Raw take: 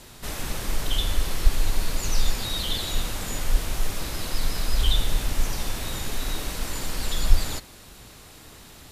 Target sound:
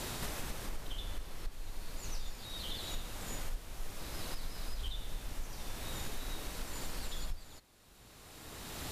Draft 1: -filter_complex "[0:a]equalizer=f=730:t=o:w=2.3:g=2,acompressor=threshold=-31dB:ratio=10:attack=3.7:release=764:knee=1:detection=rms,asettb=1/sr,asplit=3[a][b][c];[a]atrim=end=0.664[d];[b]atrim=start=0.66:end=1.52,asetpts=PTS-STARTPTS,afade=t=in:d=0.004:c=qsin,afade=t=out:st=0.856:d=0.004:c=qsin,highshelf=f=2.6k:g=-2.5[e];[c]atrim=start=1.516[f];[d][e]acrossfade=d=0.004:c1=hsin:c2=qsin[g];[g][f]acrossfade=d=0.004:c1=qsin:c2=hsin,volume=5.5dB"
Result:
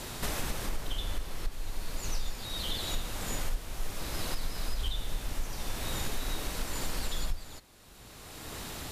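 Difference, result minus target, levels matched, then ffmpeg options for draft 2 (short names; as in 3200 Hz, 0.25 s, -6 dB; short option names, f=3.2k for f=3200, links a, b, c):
compressor: peak gain reduction -7 dB
-filter_complex "[0:a]equalizer=f=730:t=o:w=2.3:g=2,acompressor=threshold=-38.5dB:ratio=10:attack=3.7:release=764:knee=1:detection=rms,asettb=1/sr,asplit=3[a][b][c];[a]atrim=end=0.664[d];[b]atrim=start=0.66:end=1.52,asetpts=PTS-STARTPTS,afade=t=in:d=0.004:c=qsin,afade=t=out:st=0.856:d=0.004:c=qsin,highshelf=f=2.6k:g=-2.5[e];[c]atrim=start=1.516[f];[d][e]acrossfade=d=0.004:c1=hsin:c2=qsin[g];[g][f]acrossfade=d=0.004:c1=qsin:c2=hsin,volume=5.5dB"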